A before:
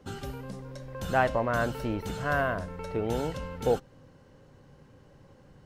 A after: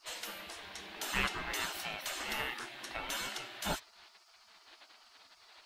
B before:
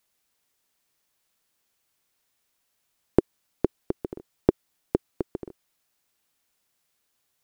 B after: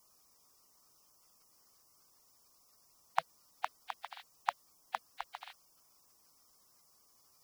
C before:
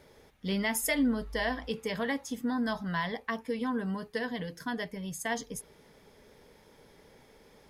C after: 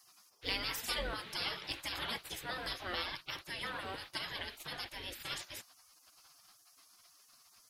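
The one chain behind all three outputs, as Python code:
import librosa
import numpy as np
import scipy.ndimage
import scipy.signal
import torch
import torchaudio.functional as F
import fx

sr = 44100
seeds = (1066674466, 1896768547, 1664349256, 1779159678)

y = fx.dmg_noise_band(x, sr, seeds[0], low_hz=1500.0, high_hz=4100.0, level_db=-59.0)
y = fx.spec_gate(y, sr, threshold_db=-20, keep='weak')
y = y * librosa.db_to_amplitude(7.0)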